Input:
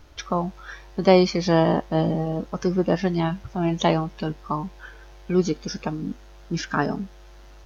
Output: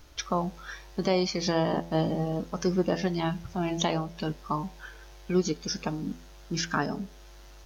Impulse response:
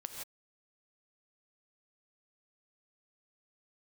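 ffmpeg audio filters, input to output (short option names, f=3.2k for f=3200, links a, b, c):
-af "highshelf=f=4.2k:g=9.5,alimiter=limit=-11dB:level=0:latency=1:release=410,bandreject=f=84.12:t=h:w=4,bandreject=f=168.24:t=h:w=4,bandreject=f=252.36:t=h:w=4,bandreject=f=336.48:t=h:w=4,bandreject=f=420.6:t=h:w=4,bandreject=f=504.72:t=h:w=4,bandreject=f=588.84:t=h:w=4,bandreject=f=672.96:t=h:w=4,bandreject=f=757.08:t=h:w=4,bandreject=f=841.2:t=h:w=4,bandreject=f=925.32:t=h:w=4,volume=-3.5dB"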